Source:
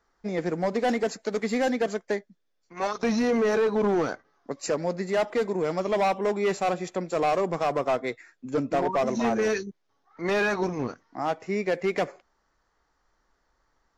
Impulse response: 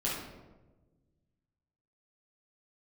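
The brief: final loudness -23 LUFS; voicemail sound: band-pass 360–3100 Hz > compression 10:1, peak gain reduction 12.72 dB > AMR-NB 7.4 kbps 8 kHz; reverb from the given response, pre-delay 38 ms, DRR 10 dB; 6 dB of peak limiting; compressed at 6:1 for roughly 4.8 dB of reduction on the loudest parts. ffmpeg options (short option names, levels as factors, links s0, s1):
-filter_complex "[0:a]acompressor=threshold=0.0501:ratio=6,alimiter=level_in=1.12:limit=0.0631:level=0:latency=1,volume=0.891,asplit=2[s0][s1];[1:a]atrim=start_sample=2205,adelay=38[s2];[s1][s2]afir=irnorm=-1:irlink=0,volume=0.158[s3];[s0][s3]amix=inputs=2:normalize=0,highpass=360,lowpass=3100,acompressor=threshold=0.0126:ratio=10,volume=11.2" -ar 8000 -c:a libopencore_amrnb -b:a 7400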